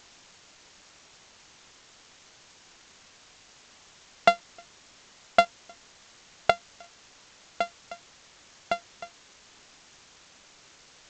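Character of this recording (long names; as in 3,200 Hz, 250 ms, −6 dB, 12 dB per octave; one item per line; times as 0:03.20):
a buzz of ramps at a fixed pitch in blocks of 64 samples
chopped level 1.9 Hz, depth 65%, duty 35%
a quantiser's noise floor 10 bits, dither triangular
G.722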